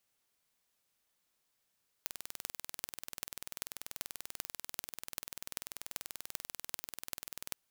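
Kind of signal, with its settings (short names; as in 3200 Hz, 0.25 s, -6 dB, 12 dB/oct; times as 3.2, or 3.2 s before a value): pulse train 20.5/s, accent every 8, -8.5 dBFS 5.49 s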